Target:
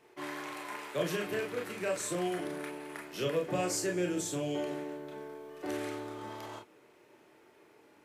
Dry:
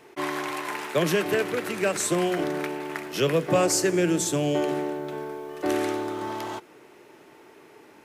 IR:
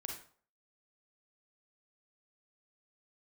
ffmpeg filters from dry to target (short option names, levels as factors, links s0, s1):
-filter_complex "[0:a]asettb=1/sr,asplit=3[s0][s1][s2];[s0]atrim=end=2.254[s3];[s1]atrim=start=2.25:end=3.02,asetpts=PTS-STARTPTS,afade=t=in:d=0.004:c=qsin,afade=t=out:st=0.766:d=0.004:c=qsin,equalizer=f=10000:w=4.5:g=11.5[s4];[s2]atrim=start=3.016[s5];[s3][s4]acrossfade=d=0.004:c1=hsin:c2=qsin[s6];[s6][s5]acrossfade=d=0.004:c1=qsin:c2=hsin[s7];[1:a]atrim=start_sample=2205,atrim=end_sample=3528,asetrate=66150,aresample=44100[s8];[s7][s8]afir=irnorm=-1:irlink=0,volume=0.631"